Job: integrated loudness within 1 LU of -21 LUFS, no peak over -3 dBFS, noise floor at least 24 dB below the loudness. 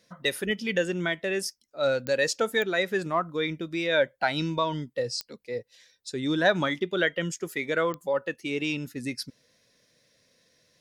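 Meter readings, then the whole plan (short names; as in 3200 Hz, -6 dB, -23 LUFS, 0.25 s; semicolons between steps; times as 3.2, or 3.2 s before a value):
clicks 4; loudness -28.0 LUFS; peak -10.5 dBFS; loudness target -21.0 LUFS
-> de-click; gain +7 dB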